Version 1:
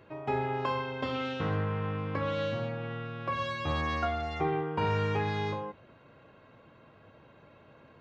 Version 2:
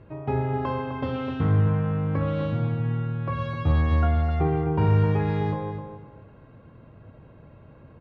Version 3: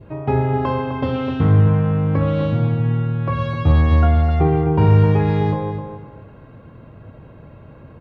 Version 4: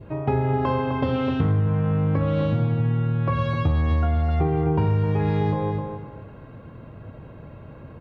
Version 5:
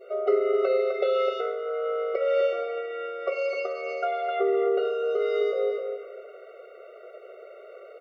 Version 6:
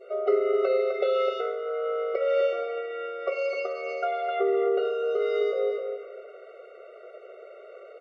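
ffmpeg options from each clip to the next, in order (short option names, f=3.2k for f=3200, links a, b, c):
-filter_complex "[0:a]aemphasis=mode=reproduction:type=riaa,asplit=2[a][b];[b]adelay=257,lowpass=f=2.9k:p=1,volume=-7dB,asplit=2[c][d];[d]adelay=257,lowpass=f=2.9k:p=1,volume=0.28,asplit=2[e][f];[f]adelay=257,lowpass=f=2.9k:p=1,volume=0.28[g];[a][c][e][g]amix=inputs=4:normalize=0"
-af "adynamicequalizer=threshold=0.00631:dfrequency=1500:dqfactor=1.2:tfrequency=1500:tqfactor=1.2:attack=5:release=100:ratio=0.375:range=1.5:mode=cutabove:tftype=bell,volume=7.5dB"
-af "acompressor=threshold=-18dB:ratio=6"
-af "afftfilt=real='re*eq(mod(floor(b*sr/1024/380),2),1)':imag='im*eq(mod(floor(b*sr/1024/380),2),1)':win_size=1024:overlap=0.75,volume=5dB"
-ar 22050 -c:a libmp3lame -b:a 40k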